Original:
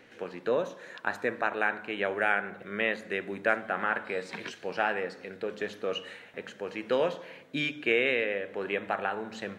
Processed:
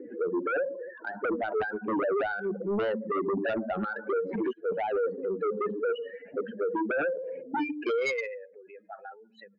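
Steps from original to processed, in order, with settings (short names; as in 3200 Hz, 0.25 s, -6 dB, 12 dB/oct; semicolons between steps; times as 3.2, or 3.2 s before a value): spectral contrast raised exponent 3.5; in parallel at +1 dB: compressor, threshold -37 dBFS, peak gain reduction 14.5 dB; on the sum: band-pass sweep 320 Hz -> 7600 Hz, 7.58–8.62; sine folder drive 9 dB, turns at -24.5 dBFS; 4.53–5.18 three-band expander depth 100%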